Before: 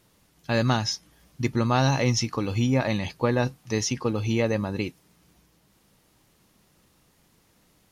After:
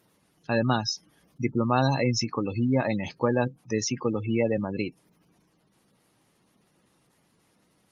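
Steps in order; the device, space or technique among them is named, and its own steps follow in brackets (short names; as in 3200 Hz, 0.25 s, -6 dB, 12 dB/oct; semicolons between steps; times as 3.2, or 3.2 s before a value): 4.14–4.58 HPF 62 Hz 24 dB/oct; noise-suppressed video call (HPF 130 Hz 12 dB/oct; spectral gate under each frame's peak -20 dB strong; Opus 32 kbps 48000 Hz)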